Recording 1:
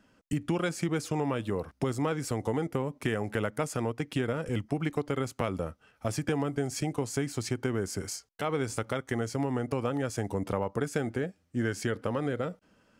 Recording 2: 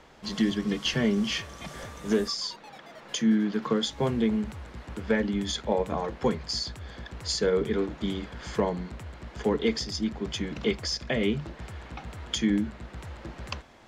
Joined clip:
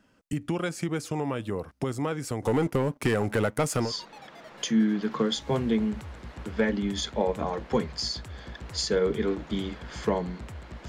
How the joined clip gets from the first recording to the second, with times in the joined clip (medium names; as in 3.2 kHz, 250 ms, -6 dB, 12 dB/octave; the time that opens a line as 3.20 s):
recording 1
2.42–3.94 s: waveshaping leveller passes 2
3.87 s: go over to recording 2 from 2.38 s, crossfade 0.14 s